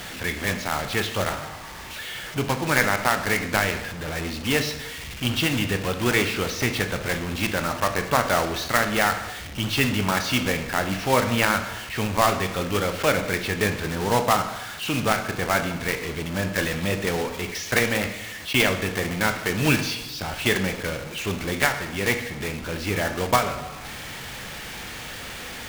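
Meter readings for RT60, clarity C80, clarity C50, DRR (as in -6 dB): 0.90 s, 12.0 dB, 10.0 dB, 7.0 dB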